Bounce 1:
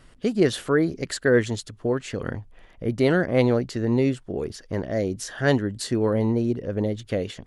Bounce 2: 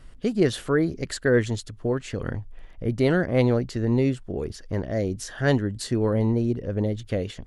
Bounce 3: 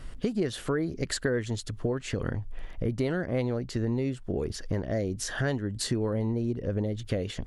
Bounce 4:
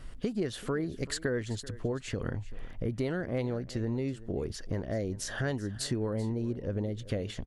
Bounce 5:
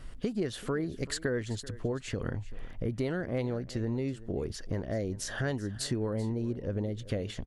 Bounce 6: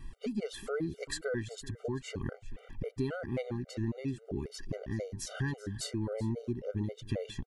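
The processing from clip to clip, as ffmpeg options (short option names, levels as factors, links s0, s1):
-af "lowshelf=f=82:g=12,volume=0.794"
-af "acompressor=threshold=0.0251:ratio=5,volume=1.88"
-af "aecho=1:1:385:0.126,volume=0.668"
-af anull
-af "afftfilt=real='re*gt(sin(2*PI*3.7*pts/sr)*(1-2*mod(floor(b*sr/1024/390),2)),0)':imag='im*gt(sin(2*PI*3.7*pts/sr)*(1-2*mod(floor(b*sr/1024/390),2)),0)':win_size=1024:overlap=0.75"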